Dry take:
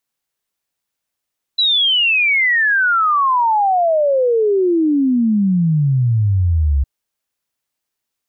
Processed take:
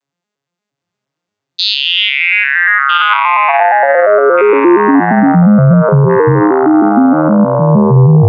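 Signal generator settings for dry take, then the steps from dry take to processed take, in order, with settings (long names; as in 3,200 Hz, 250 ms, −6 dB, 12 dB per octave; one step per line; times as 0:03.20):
exponential sine sweep 4,000 Hz → 66 Hz 5.26 s −11.5 dBFS
vocoder with an arpeggio as carrier major triad, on C#3, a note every 116 ms
delay with pitch and tempo change per echo 772 ms, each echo −5 semitones, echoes 3
boost into a limiter +13 dB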